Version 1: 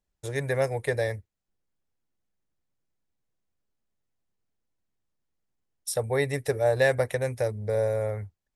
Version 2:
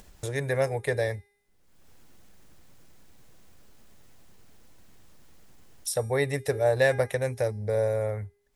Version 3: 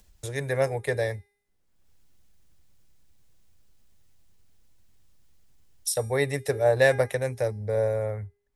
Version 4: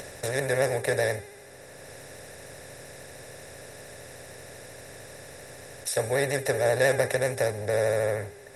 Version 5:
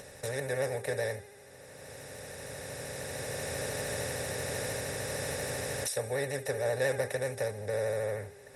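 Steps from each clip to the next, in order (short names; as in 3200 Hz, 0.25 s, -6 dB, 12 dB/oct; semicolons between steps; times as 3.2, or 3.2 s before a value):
de-hum 406.2 Hz, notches 30; upward compressor, threshold -29 dBFS
three-band expander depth 40%
per-bin compression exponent 0.4; vibrato 13 Hz 59 cents; gain -5 dB
recorder AGC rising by 6.7 dB/s; notch comb 340 Hz; gain -6.5 dB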